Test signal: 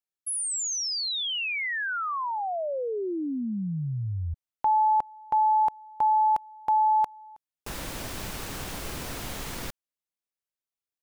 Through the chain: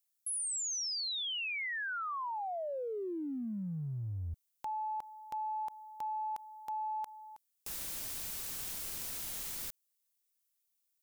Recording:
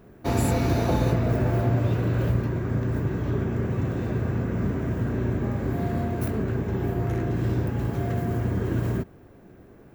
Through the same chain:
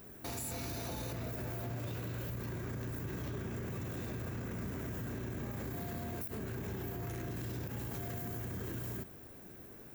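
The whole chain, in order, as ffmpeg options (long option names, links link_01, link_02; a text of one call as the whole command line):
ffmpeg -i in.wav -af "crystalizer=i=5.5:c=0,acompressor=threshold=-30dB:ratio=10:attack=0.57:release=36:knee=1:detection=rms,volume=-5.5dB" out.wav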